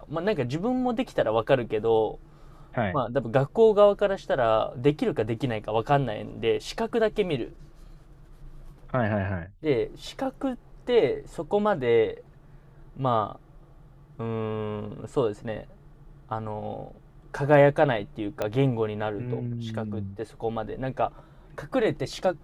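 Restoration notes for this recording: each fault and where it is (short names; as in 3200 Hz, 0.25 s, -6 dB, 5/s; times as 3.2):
18.42 pop -14 dBFS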